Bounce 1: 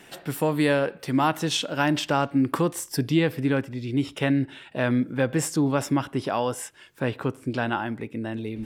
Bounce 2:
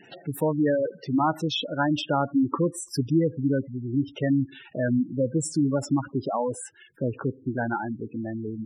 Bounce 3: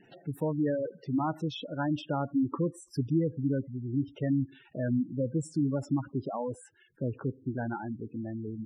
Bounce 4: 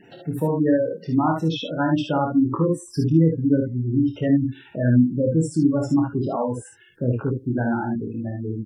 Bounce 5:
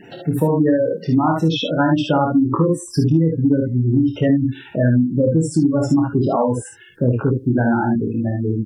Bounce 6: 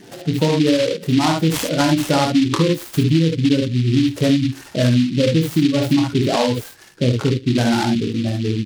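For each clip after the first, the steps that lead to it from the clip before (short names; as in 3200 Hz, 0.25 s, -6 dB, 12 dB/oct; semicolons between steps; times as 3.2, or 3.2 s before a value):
spectral gate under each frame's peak -10 dB strong
tilt -2 dB/oct; gain -9 dB
early reflections 25 ms -5.5 dB, 56 ms -6 dB, 73 ms -5.5 dB; gain +7.5 dB
compressor, threshold -20 dBFS, peak gain reduction 9 dB; gain +8 dB
noise-modulated delay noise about 3100 Hz, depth 0.09 ms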